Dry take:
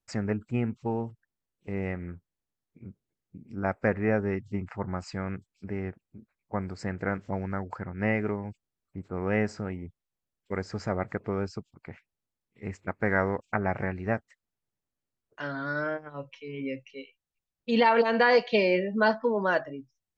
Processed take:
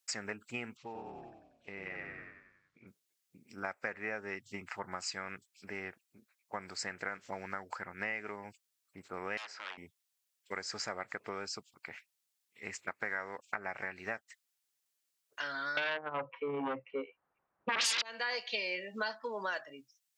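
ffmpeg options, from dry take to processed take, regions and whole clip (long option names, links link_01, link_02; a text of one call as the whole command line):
ffmpeg -i in.wav -filter_complex "[0:a]asettb=1/sr,asplit=3[link_01][link_02][link_03];[link_01]atrim=end=0.774[link_04];[link_02]atrim=start=0.77:end=2.87,asetpts=PTS-STARTPTS,afade=type=in:duration=0.004:curve=qsin,afade=type=out:start_time=2.096:duration=0.004:curve=qsin,lowpass=4100,asplit=9[link_05][link_06][link_07][link_08][link_09][link_10][link_11][link_12][link_13];[link_06]adelay=93,afreqshift=-32,volume=-3dB[link_14];[link_07]adelay=186,afreqshift=-64,volume=-8.2dB[link_15];[link_08]adelay=279,afreqshift=-96,volume=-13.4dB[link_16];[link_09]adelay=372,afreqshift=-128,volume=-18.6dB[link_17];[link_10]adelay=465,afreqshift=-160,volume=-23.8dB[link_18];[link_11]adelay=558,afreqshift=-192,volume=-29dB[link_19];[link_12]adelay=651,afreqshift=-224,volume=-34.2dB[link_20];[link_13]adelay=744,afreqshift=-256,volume=-39.3dB[link_21];[link_05][link_14][link_15][link_16][link_17][link_18][link_19][link_20][link_21]amix=inputs=9:normalize=0,atrim=end_sample=92610,acompressor=threshold=-34dB:ratio=4:attack=3.2:release=140:knee=1:detection=peak[link_22];[link_03]atrim=start=2.866[link_23];[link_04][link_22]acrossfade=duration=0.004:curve1=hsin:curve2=qsin[link_24];[link_24][link_23]acrossfade=duration=0.004:curve1=qsin:curve2=hsin,asettb=1/sr,asplit=3[link_25][link_26][link_27];[link_25]atrim=end=9.374[link_28];[link_26]atrim=start=9.37:end=9.78,asetpts=PTS-STARTPTS,afade=type=in:duration=0.004:curve=qsin,afade=type=out:start_time=0.406:duration=0.004:curve=qsin,aeval=exprs='0.0251*(abs(mod(val(0)/0.0251+3,4)-2)-1)':channel_layout=same,highpass=580,lowpass=3100[link_29];[link_27]atrim=start=9.776[link_30];[link_28][link_29]acrossfade=duration=0.004:curve1=hsin:curve2=qsin[link_31];[link_31][link_30]acrossfade=duration=0.004:curve1=qsin:curve2=hsin,asettb=1/sr,asplit=3[link_32][link_33][link_34];[link_32]atrim=end=15.774[link_35];[link_33]atrim=start=15.77:end=18.02,asetpts=PTS-STARTPTS,afade=type=in:duration=0.004:curve=qsin,afade=type=out:start_time=2.246:duration=0.004:curve=qsin,lowpass=frequency=1200:width=0.5412,lowpass=frequency=1200:width=1.3066,aeval=exprs='0.251*sin(PI/2*8.91*val(0)/0.251)':channel_layout=same[link_36];[link_34]atrim=start=18.016[link_37];[link_35][link_36]acrossfade=duration=0.004:curve1=hsin:curve2=qsin[link_38];[link_38][link_37]acrossfade=duration=0.004:curve1=qsin:curve2=hsin,highpass=frequency=1400:poles=1,highshelf=frequency=2300:gain=10,acompressor=threshold=-38dB:ratio=4,volume=2.5dB" out.wav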